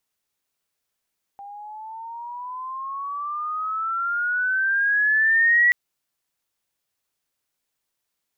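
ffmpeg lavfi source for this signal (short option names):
-f lavfi -i "aevalsrc='pow(10,(-13+23*(t/4.33-1))/20)*sin(2*PI*796*4.33/(15.5*log(2)/12)*(exp(15.5*log(2)/12*t/4.33)-1))':d=4.33:s=44100"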